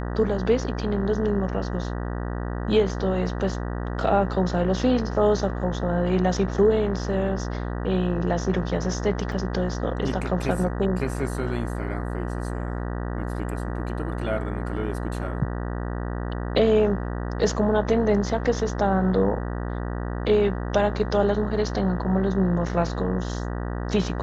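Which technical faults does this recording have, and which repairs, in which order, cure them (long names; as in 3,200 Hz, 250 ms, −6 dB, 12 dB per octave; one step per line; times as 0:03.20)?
mains buzz 60 Hz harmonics 32 −29 dBFS
0:09.32: drop-out 2.1 ms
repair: hum removal 60 Hz, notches 32
repair the gap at 0:09.32, 2.1 ms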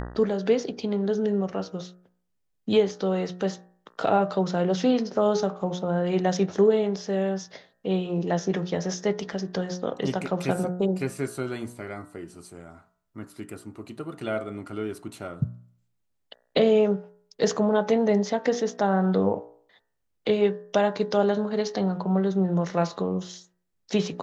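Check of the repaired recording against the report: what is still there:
none of them is left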